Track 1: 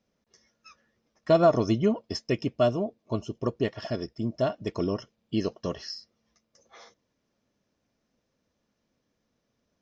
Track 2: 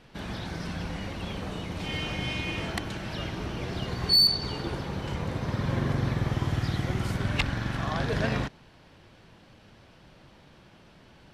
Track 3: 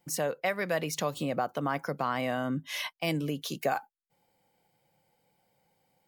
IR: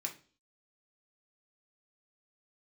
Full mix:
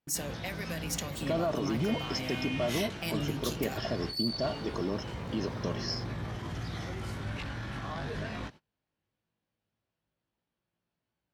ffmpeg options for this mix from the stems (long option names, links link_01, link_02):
-filter_complex "[0:a]highpass=frequency=130:width=0.5412,highpass=frequency=130:width=1.3066,alimiter=level_in=1.5dB:limit=-24dB:level=0:latency=1,volume=-1.5dB,volume=2dB[link_01];[1:a]highpass=44,alimiter=limit=-24dB:level=0:latency=1:release=12,flanger=delay=17.5:depth=2:speed=0.18,volume=-2.5dB[link_02];[2:a]acrossover=split=220|3000[link_03][link_04][link_05];[link_04]acompressor=threshold=-47dB:ratio=2.5[link_06];[link_03][link_06][link_05]amix=inputs=3:normalize=0,volume=-2.5dB,asplit=2[link_07][link_08];[link_08]volume=-4dB[link_09];[3:a]atrim=start_sample=2205[link_10];[link_09][link_10]afir=irnorm=-1:irlink=0[link_11];[link_01][link_02][link_07][link_11]amix=inputs=4:normalize=0,agate=range=-27dB:threshold=-49dB:ratio=16:detection=peak"